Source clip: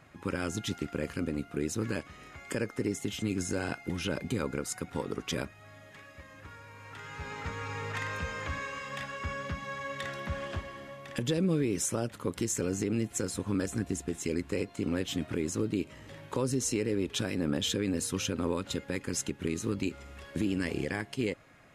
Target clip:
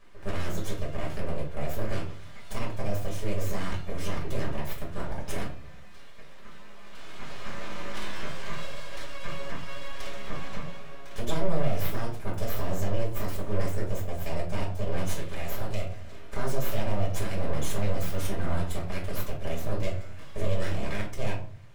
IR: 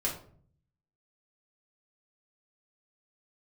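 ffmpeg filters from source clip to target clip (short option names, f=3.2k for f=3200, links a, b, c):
-filter_complex "[0:a]asettb=1/sr,asplit=3[a][b][c];[a]atrim=end=15.034[d];[b]atrim=start=15.03:end=15.81,asetpts=PTS-STARTPTS,afade=t=in:d=0.004:c=qsin,afade=t=out:st=0.776:d=0.004:c=qsin,tiltshelf=f=780:g=-5[e];[c]atrim=start=15.806[f];[d][e]acrossfade=d=0.004:c1=hsin:c2=qsin[g];[g][f]acrossfade=d=0.004:c1=qsin:c2=hsin,aeval=exprs='abs(val(0))':c=same[h];[1:a]atrim=start_sample=2205[i];[h][i]afir=irnorm=-1:irlink=0,volume=-4dB"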